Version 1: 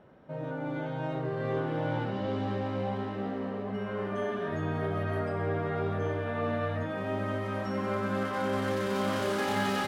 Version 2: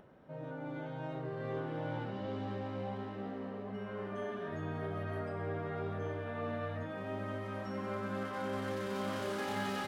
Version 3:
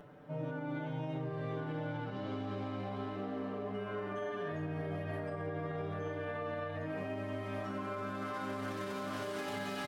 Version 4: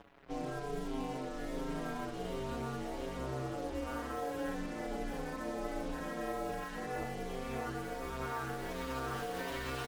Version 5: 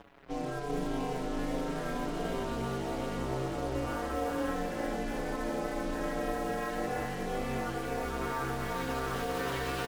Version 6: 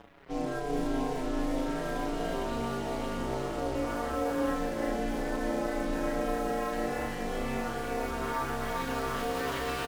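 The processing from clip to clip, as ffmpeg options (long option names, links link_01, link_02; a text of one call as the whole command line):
ffmpeg -i in.wav -af "acompressor=mode=upward:threshold=-46dB:ratio=2.5,volume=-7.5dB" out.wav
ffmpeg -i in.wav -af "aecho=1:1:6.8:0.91,alimiter=level_in=8.5dB:limit=-24dB:level=0:latency=1:release=140,volume=-8.5dB,volume=2dB" out.wav
ffmpeg -i in.wav -filter_complex "[0:a]acrusher=bits=7:mix=0:aa=0.5,aeval=exprs='val(0)*sin(2*PI*130*n/s)':channel_layout=same,asplit=2[link_01][link_02];[link_02]adelay=6.6,afreqshift=-1.4[link_03];[link_01][link_03]amix=inputs=2:normalize=1,volume=6dB" out.wav
ffmpeg -i in.wav -af "aecho=1:1:389:0.668,volume=3.5dB" out.wav
ffmpeg -i in.wav -filter_complex "[0:a]asplit=2[link_01][link_02];[link_02]adelay=35,volume=-4dB[link_03];[link_01][link_03]amix=inputs=2:normalize=0" out.wav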